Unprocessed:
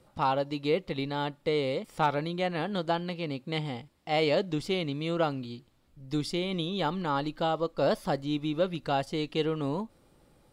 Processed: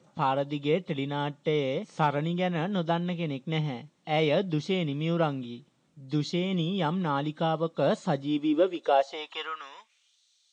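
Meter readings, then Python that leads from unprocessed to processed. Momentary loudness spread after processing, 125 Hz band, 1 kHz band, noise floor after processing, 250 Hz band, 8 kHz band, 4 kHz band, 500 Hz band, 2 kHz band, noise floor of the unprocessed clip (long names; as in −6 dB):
9 LU, +4.0 dB, +1.0 dB, −69 dBFS, +2.5 dB, −1.0 dB, −0.5 dB, +1.0 dB, +0.5 dB, −65 dBFS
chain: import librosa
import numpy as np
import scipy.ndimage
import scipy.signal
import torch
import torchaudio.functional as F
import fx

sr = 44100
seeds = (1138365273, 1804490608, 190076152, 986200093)

y = fx.freq_compress(x, sr, knee_hz=2900.0, ratio=1.5)
y = fx.bass_treble(y, sr, bass_db=-5, treble_db=3)
y = fx.filter_sweep_highpass(y, sr, from_hz=160.0, to_hz=3900.0, start_s=8.2, end_s=10.21, q=3.4)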